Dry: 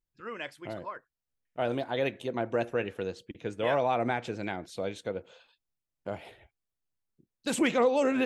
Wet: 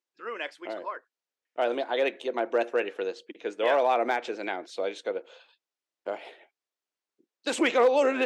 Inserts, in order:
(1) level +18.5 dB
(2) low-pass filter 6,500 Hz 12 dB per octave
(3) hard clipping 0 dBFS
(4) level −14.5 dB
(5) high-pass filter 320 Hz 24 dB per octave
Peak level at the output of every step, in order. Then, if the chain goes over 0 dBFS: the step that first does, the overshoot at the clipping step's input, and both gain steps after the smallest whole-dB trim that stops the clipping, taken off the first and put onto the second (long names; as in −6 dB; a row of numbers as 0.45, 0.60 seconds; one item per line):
+3.0, +3.0, 0.0, −14.5, −13.0 dBFS
step 1, 3.0 dB
step 1 +15.5 dB, step 4 −11.5 dB